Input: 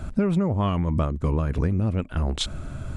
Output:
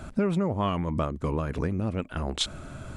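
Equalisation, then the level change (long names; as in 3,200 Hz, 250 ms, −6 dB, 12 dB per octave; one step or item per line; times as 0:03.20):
low-shelf EQ 140 Hz −11.5 dB
0.0 dB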